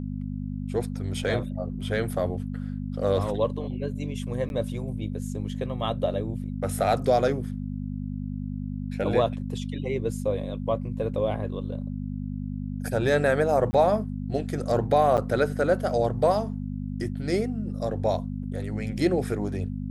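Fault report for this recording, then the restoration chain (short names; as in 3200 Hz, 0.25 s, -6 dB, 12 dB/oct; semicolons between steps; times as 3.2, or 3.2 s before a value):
hum 50 Hz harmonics 5 -32 dBFS
1.24–1.25 gap 5.5 ms
4.49–4.5 gap 11 ms
13.71–13.73 gap 20 ms
15.17–15.18 gap 8.3 ms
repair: de-hum 50 Hz, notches 5; interpolate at 1.24, 5.5 ms; interpolate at 4.49, 11 ms; interpolate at 13.71, 20 ms; interpolate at 15.17, 8.3 ms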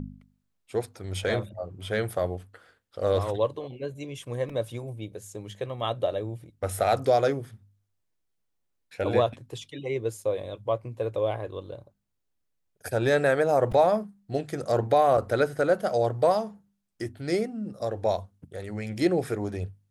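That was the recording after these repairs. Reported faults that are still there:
none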